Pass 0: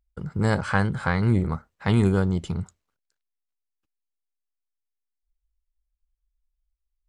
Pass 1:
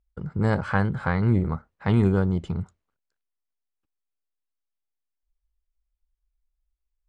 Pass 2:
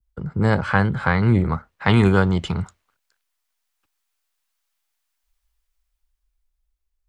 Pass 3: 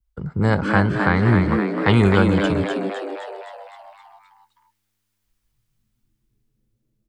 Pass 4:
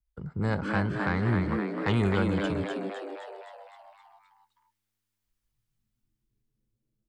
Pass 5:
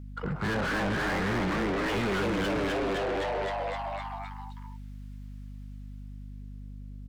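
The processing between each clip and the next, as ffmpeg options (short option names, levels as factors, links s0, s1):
-af "lowpass=f=1900:p=1"
-filter_complex "[0:a]adynamicequalizer=threshold=0.00708:dfrequency=3000:dqfactor=0.76:tfrequency=3000:tqfactor=0.76:attack=5:release=100:ratio=0.375:range=2:mode=boostabove:tftype=bell,acrossover=split=100|740[s0][s1][s2];[s2]dynaudnorm=f=310:g=11:m=5.01[s3];[s0][s1][s3]amix=inputs=3:normalize=0,volume=1.58"
-filter_complex "[0:a]asplit=9[s0][s1][s2][s3][s4][s5][s6][s7][s8];[s1]adelay=258,afreqshift=100,volume=0.531[s9];[s2]adelay=516,afreqshift=200,volume=0.309[s10];[s3]adelay=774,afreqshift=300,volume=0.178[s11];[s4]adelay=1032,afreqshift=400,volume=0.104[s12];[s5]adelay=1290,afreqshift=500,volume=0.0603[s13];[s6]adelay=1548,afreqshift=600,volume=0.0347[s14];[s7]adelay=1806,afreqshift=700,volume=0.0202[s15];[s8]adelay=2064,afreqshift=800,volume=0.0117[s16];[s0][s9][s10][s11][s12][s13][s14][s15][s16]amix=inputs=9:normalize=0"
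-af "asoftclip=type=tanh:threshold=0.501,volume=0.355"
-filter_complex "[0:a]acrossover=split=910[s0][s1];[s0]adelay=60[s2];[s2][s1]amix=inputs=2:normalize=0,asplit=2[s3][s4];[s4]highpass=f=720:p=1,volume=79.4,asoftclip=type=tanh:threshold=0.188[s5];[s3][s5]amix=inputs=2:normalize=0,lowpass=f=2300:p=1,volume=0.501,aeval=exprs='val(0)+0.0224*(sin(2*PI*50*n/s)+sin(2*PI*2*50*n/s)/2+sin(2*PI*3*50*n/s)/3+sin(2*PI*4*50*n/s)/4+sin(2*PI*5*50*n/s)/5)':c=same,volume=0.422"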